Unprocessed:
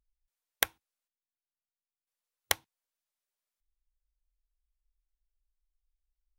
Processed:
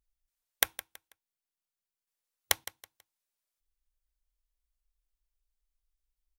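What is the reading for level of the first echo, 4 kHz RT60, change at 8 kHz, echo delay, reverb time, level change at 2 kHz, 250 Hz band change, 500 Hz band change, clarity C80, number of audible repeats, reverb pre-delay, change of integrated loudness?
−15.5 dB, no reverb audible, +2.5 dB, 163 ms, no reverb audible, 0.0 dB, −1.0 dB, −1.0 dB, no reverb audible, 2, no reverb audible, +1.5 dB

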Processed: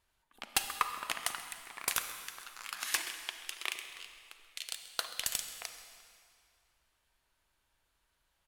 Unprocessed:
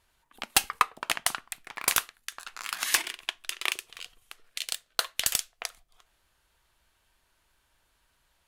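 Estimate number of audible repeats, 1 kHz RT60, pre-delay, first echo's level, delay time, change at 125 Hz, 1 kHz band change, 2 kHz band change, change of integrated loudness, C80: 1, 2.4 s, 34 ms, −17.5 dB, 133 ms, −7.5 dB, −7.0 dB, −7.0 dB, −7.5 dB, 8.5 dB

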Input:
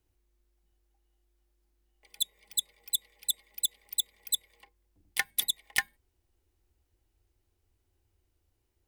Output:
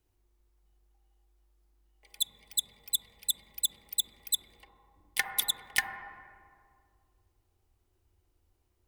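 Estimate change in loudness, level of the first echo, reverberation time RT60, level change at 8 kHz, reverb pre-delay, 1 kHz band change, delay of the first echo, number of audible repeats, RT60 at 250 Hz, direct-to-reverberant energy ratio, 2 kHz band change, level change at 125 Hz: 0.0 dB, no echo audible, 2.1 s, 0.0 dB, 37 ms, +4.0 dB, no echo audible, no echo audible, 2.5 s, 1.5 dB, +0.5 dB, +2.0 dB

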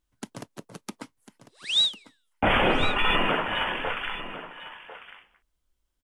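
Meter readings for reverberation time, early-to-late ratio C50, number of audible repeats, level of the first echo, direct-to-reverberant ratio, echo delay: no reverb audible, no reverb audible, 1, −13.5 dB, no reverb audible, 1,048 ms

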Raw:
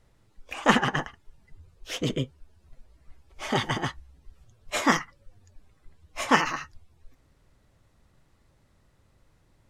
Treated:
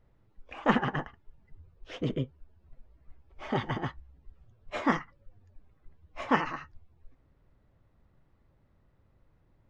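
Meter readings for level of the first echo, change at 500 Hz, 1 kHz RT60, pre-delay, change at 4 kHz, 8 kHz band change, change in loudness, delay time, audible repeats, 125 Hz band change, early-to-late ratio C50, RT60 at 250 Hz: no echo audible, −3.5 dB, no reverb audible, no reverb audible, −11.5 dB, −21.5 dB, −5.0 dB, no echo audible, no echo audible, −2.5 dB, no reverb audible, no reverb audible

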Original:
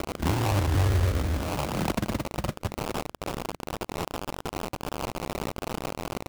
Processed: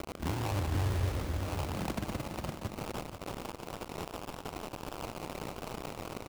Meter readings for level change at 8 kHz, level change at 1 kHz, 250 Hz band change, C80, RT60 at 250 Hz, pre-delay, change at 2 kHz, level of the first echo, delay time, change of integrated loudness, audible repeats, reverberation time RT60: −7.5 dB, −7.5 dB, −7.5 dB, no reverb audible, no reverb audible, no reverb audible, −7.5 dB, −13.0 dB, 172 ms, −7.5 dB, 5, no reverb audible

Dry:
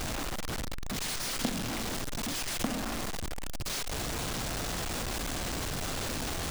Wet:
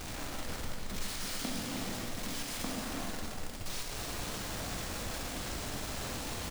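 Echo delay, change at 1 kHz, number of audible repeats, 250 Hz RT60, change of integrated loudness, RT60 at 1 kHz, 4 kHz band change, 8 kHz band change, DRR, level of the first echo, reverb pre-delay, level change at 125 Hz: 307 ms, −4.5 dB, 1, 1.8 s, −4.5 dB, 1.8 s, −4.5 dB, −4.5 dB, −1.5 dB, −7.0 dB, 5 ms, −4.5 dB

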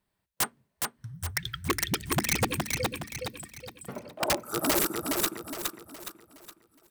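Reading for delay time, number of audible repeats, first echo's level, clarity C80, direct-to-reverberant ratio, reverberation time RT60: 416 ms, 4, −3.5 dB, no reverb audible, no reverb audible, no reverb audible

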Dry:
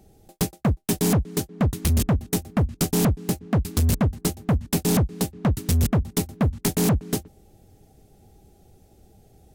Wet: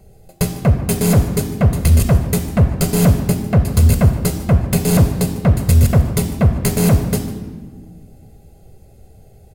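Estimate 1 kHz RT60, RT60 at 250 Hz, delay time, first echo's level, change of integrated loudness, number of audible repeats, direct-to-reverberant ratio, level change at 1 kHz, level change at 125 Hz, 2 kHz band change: 1.3 s, 2.2 s, 152 ms, −17.5 dB, +8.0 dB, 1, 6.0 dB, +5.5 dB, +10.0 dB, +7.0 dB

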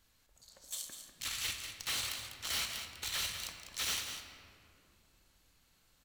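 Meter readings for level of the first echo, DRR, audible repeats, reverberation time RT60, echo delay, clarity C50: −8.5 dB, 3.0 dB, 1, 2.6 s, 198 ms, 4.5 dB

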